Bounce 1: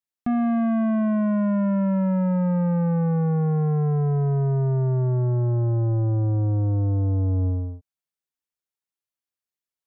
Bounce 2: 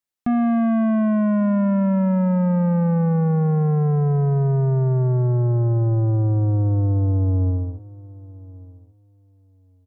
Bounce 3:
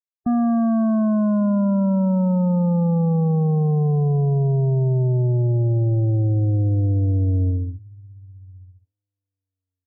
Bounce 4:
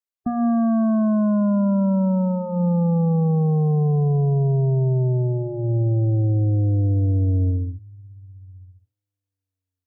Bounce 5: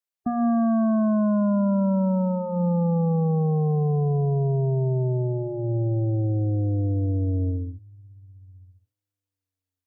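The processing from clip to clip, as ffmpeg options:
ffmpeg -i in.wav -filter_complex "[0:a]asplit=2[link_01][link_02];[link_02]adelay=1139,lowpass=frequency=1800:poles=1,volume=-21dB,asplit=2[link_03][link_04];[link_04]adelay=1139,lowpass=frequency=1800:poles=1,volume=0.17[link_05];[link_01][link_03][link_05]amix=inputs=3:normalize=0,volume=3dB" out.wav
ffmpeg -i in.wav -af "afftdn=noise_reduction=32:noise_floor=-25" out.wav
ffmpeg -i in.wav -af "bandreject=frequency=60:width_type=h:width=6,bandreject=frequency=120:width_type=h:width=6,bandreject=frequency=180:width_type=h:width=6,bandreject=frequency=240:width_type=h:width=6" out.wav
ffmpeg -i in.wav -af "lowshelf=frequency=150:gain=-7.5" out.wav

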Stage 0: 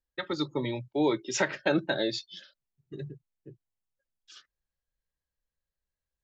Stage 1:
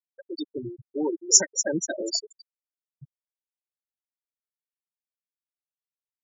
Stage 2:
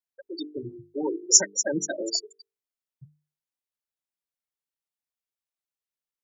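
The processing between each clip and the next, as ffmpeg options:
ffmpeg -i in.wav -filter_complex "[0:a]asplit=9[link_01][link_02][link_03][link_04][link_05][link_06][link_07][link_08][link_09];[link_02]adelay=241,afreqshift=51,volume=-9.5dB[link_10];[link_03]adelay=482,afreqshift=102,volume=-13.5dB[link_11];[link_04]adelay=723,afreqshift=153,volume=-17.5dB[link_12];[link_05]adelay=964,afreqshift=204,volume=-21.5dB[link_13];[link_06]adelay=1205,afreqshift=255,volume=-25.6dB[link_14];[link_07]adelay=1446,afreqshift=306,volume=-29.6dB[link_15];[link_08]adelay=1687,afreqshift=357,volume=-33.6dB[link_16];[link_09]adelay=1928,afreqshift=408,volume=-37.6dB[link_17];[link_01][link_10][link_11][link_12][link_13][link_14][link_15][link_16][link_17]amix=inputs=9:normalize=0,aexciter=amount=15.2:drive=3.5:freq=5200,afftfilt=real='re*gte(hypot(re,im),0.178)':imag='im*gte(hypot(re,im),0.178)':win_size=1024:overlap=0.75,volume=-1dB" out.wav
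ffmpeg -i in.wav -af "bandreject=frequency=50:width_type=h:width=6,bandreject=frequency=100:width_type=h:width=6,bandreject=frequency=150:width_type=h:width=6,bandreject=frequency=200:width_type=h:width=6,bandreject=frequency=250:width_type=h:width=6,bandreject=frequency=300:width_type=h:width=6,bandreject=frequency=350:width_type=h:width=6,bandreject=frequency=400:width_type=h:width=6,bandreject=frequency=450:width_type=h:width=6" out.wav

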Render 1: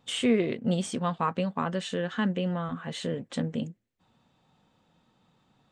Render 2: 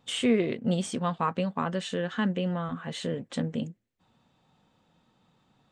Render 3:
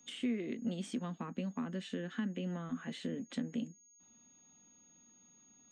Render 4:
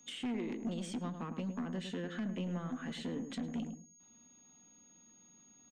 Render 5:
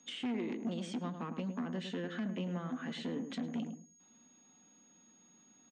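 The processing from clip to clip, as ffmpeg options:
ffmpeg -i in.wav -af anull out.wav
ffmpeg -i in.wav -filter_complex "[0:a]aeval=exprs='val(0)+0.00224*sin(2*PI*6600*n/s)':channel_layout=same,equalizer=frequency=125:width_type=o:width=1:gain=-11,equalizer=frequency=250:width_type=o:width=1:gain=10,equalizer=frequency=500:width_type=o:width=1:gain=-4,equalizer=frequency=1000:width_type=o:width=1:gain=-4,equalizer=frequency=2000:width_type=o:width=1:gain=4,equalizer=frequency=8000:width_type=o:width=1:gain=-4,acrossover=split=130|390[link_01][link_02][link_03];[link_01]acompressor=threshold=-51dB:ratio=4[link_04];[link_02]acompressor=threshold=-30dB:ratio=4[link_05];[link_03]acompressor=threshold=-40dB:ratio=4[link_06];[link_04][link_05][link_06]amix=inputs=3:normalize=0,volume=-6dB" out.wav
ffmpeg -i in.wav -filter_complex "[0:a]aeval=exprs='(tanh(56.2*val(0)+0.1)-tanh(0.1))/56.2':channel_layout=same,asplit=2[link_01][link_02];[link_02]adelay=106,lowpass=frequency=1000:poles=1,volume=-6.5dB,asplit=2[link_03][link_04];[link_04]adelay=106,lowpass=frequency=1000:poles=1,volume=0.18,asplit=2[link_05][link_06];[link_06]adelay=106,lowpass=frequency=1000:poles=1,volume=0.18[link_07];[link_03][link_05][link_07]amix=inputs=3:normalize=0[link_08];[link_01][link_08]amix=inputs=2:normalize=0,volume=2dB" out.wav
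ffmpeg -i in.wav -af "highpass=150,lowpass=6000,volume=1.5dB" out.wav

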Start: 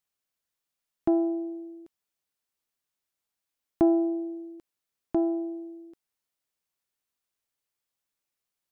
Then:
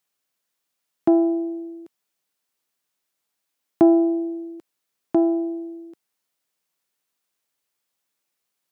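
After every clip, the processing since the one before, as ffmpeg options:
ffmpeg -i in.wav -af "highpass=140,volume=7dB" out.wav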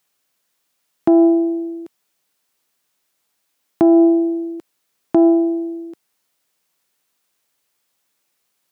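ffmpeg -i in.wav -af "alimiter=level_in=12.5dB:limit=-1dB:release=50:level=0:latency=1,volume=-4dB" out.wav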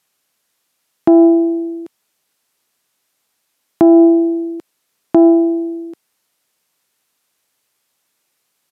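ffmpeg -i in.wav -af "aresample=32000,aresample=44100,volume=3.5dB" out.wav

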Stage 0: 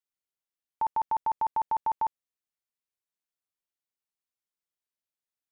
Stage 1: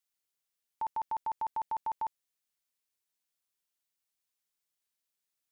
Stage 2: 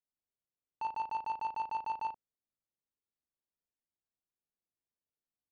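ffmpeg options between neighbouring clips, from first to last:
ffmpeg -i in.wav -af "highshelf=frequency=2100:gain=7.5,alimiter=level_in=4.5dB:limit=-24dB:level=0:latency=1:release=10,volume=-4.5dB" out.wav
ffmpeg -i in.wav -af "asoftclip=type=tanh:threshold=-31dB,aecho=1:1:37|75:0.668|0.299,adynamicsmooth=sensitivity=4.5:basefreq=660" out.wav

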